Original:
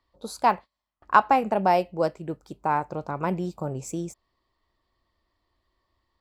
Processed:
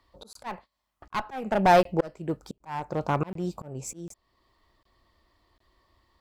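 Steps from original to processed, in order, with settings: one-sided clip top -23 dBFS, bottom -8.5 dBFS; auto swell 0.55 s; crackling interface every 0.75 s, samples 1024, zero, from 0.33; gain +8 dB

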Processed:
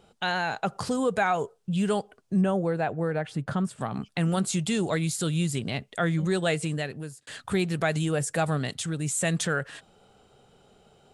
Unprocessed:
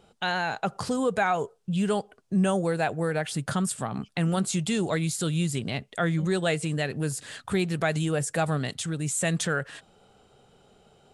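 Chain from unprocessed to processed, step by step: 2.41–3.81 LPF 1400 Hz 6 dB/oct; 6.65–7.27 fade out

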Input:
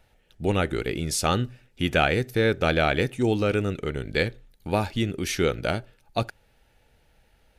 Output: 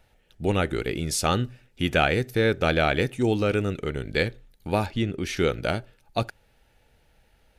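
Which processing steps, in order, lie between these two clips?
4.86–5.37 LPF 3600 Hz 6 dB/oct

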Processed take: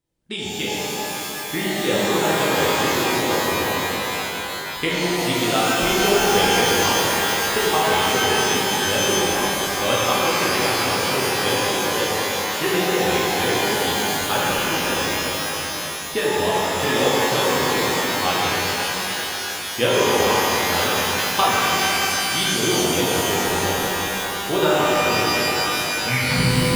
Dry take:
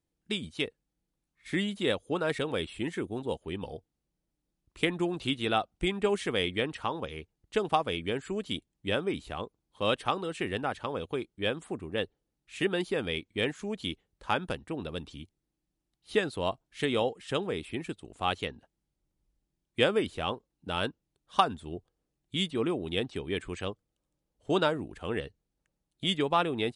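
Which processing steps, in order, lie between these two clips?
tape stop at the end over 0.90 s; shimmer reverb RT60 3.9 s, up +12 st, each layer -2 dB, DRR -7.5 dB; gain +1.5 dB

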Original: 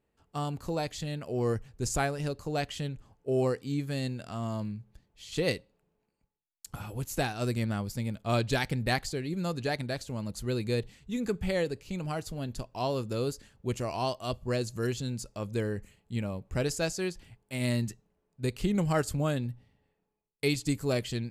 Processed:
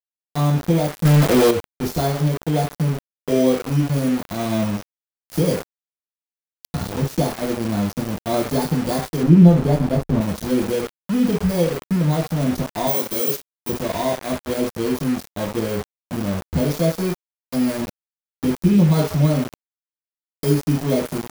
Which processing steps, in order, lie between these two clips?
FFT order left unsorted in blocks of 16 samples; recorder AGC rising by 10 dB/s; 12.87–13.69 RIAA curve recording; reverb RT60 0.55 s, pre-delay 3 ms, DRR -10 dB; sample gate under -17.5 dBFS; 1.05–1.51 sample leveller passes 3; 9.23–10.21 tilt -2.5 dB/oct; gain -7.5 dB

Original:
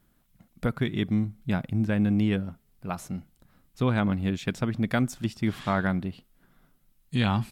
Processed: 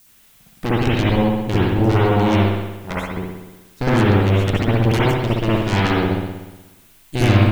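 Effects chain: added harmonics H 8 -6 dB, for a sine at -10.5 dBFS; added noise blue -49 dBFS; spring tank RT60 1.1 s, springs 60 ms, chirp 75 ms, DRR -7.5 dB; gain -3.5 dB

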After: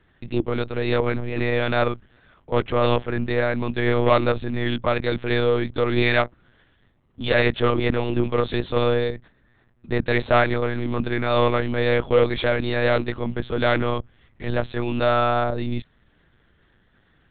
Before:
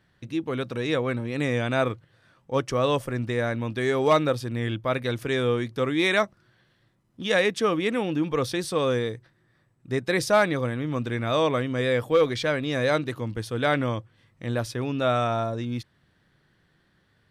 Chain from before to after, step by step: added harmonics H 5 -21 dB, 6 -20 dB, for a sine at -10.5 dBFS; monotone LPC vocoder at 8 kHz 120 Hz; gain +2 dB

